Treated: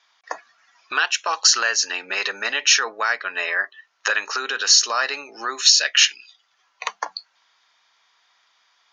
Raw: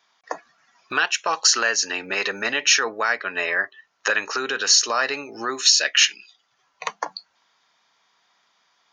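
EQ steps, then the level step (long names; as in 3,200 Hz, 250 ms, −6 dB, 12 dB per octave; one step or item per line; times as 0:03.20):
high-pass filter 1,400 Hz 6 dB per octave
dynamic equaliser 2,200 Hz, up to −4 dB, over −35 dBFS, Q 1.5
high-frequency loss of the air 56 metres
+5.5 dB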